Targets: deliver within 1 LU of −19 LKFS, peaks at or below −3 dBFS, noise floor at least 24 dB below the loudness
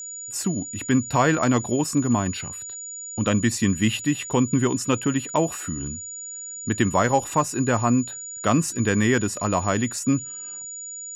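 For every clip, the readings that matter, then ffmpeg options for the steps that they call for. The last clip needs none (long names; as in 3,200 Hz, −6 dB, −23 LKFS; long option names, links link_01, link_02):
interfering tone 6,900 Hz; level of the tone −33 dBFS; integrated loudness −23.5 LKFS; sample peak −6.0 dBFS; target loudness −19.0 LKFS
→ -af "bandreject=frequency=6900:width=30"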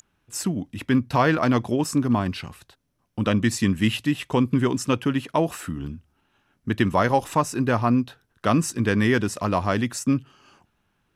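interfering tone none found; integrated loudness −23.0 LKFS; sample peak −6.0 dBFS; target loudness −19.0 LKFS
→ -af "volume=4dB,alimiter=limit=-3dB:level=0:latency=1"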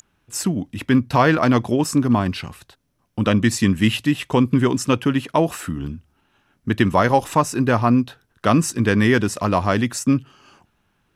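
integrated loudness −19.5 LKFS; sample peak −3.0 dBFS; background noise floor −67 dBFS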